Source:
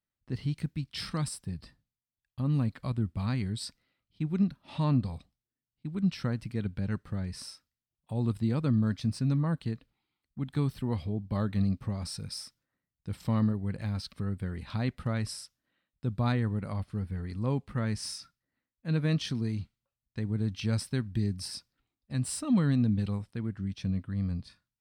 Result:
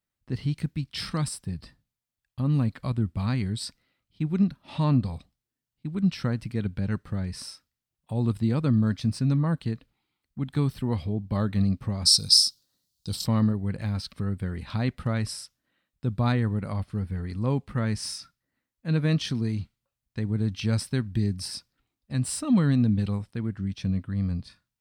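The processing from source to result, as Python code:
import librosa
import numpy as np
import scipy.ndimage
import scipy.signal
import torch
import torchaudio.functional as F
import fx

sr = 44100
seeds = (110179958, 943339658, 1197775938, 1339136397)

y = fx.high_shelf_res(x, sr, hz=3000.0, db=13.0, q=3.0, at=(12.05, 13.24), fade=0.02)
y = y * 10.0 ** (4.0 / 20.0)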